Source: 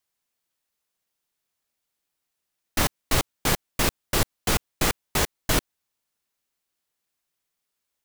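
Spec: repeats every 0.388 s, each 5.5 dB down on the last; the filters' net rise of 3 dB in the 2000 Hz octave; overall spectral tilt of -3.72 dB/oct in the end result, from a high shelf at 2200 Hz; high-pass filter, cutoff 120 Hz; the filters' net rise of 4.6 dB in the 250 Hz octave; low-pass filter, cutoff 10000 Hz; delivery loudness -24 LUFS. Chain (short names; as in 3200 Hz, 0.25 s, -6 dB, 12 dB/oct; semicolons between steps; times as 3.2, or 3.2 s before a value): HPF 120 Hz; LPF 10000 Hz; bell 250 Hz +6.5 dB; bell 2000 Hz +6 dB; high shelf 2200 Hz -4.5 dB; feedback echo 0.388 s, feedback 53%, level -5.5 dB; gain +2 dB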